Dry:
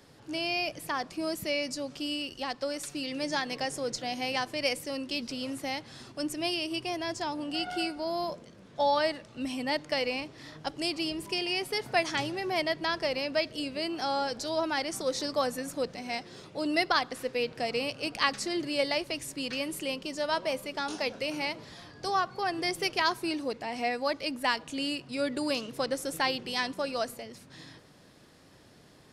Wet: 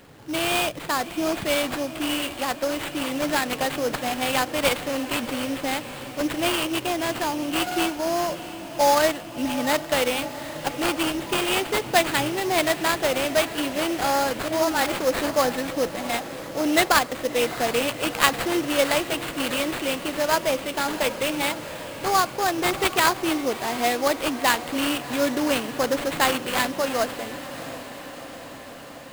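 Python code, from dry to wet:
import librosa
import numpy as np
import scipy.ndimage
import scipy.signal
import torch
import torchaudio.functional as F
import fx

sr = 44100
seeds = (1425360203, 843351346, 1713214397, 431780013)

y = fx.sample_hold(x, sr, seeds[0], rate_hz=5800.0, jitter_pct=20)
y = fx.dispersion(y, sr, late='highs', ms=44.0, hz=420.0, at=(14.48, 14.92))
y = fx.echo_diffused(y, sr, ms=700, feedback_pct=70, wet_db=-14.0)
y = F.gain(torch.from_numpy(y), 7.5).numpy()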